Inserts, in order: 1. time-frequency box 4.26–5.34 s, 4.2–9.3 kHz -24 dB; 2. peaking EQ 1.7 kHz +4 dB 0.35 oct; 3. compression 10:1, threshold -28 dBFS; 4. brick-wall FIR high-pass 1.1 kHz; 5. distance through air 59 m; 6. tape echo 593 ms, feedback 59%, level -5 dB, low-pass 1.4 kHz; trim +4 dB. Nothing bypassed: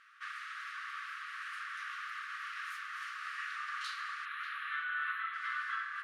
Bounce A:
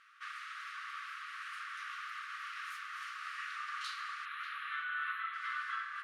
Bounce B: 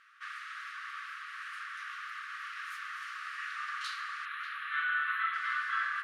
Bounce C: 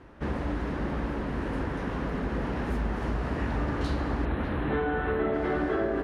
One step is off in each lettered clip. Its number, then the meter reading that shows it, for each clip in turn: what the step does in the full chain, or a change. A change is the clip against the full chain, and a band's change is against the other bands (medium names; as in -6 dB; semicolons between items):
2, 2 kHz band -2.0 dB; 3, mean gain reduction 2.0 dB; 4, crest factor change -2.5 dB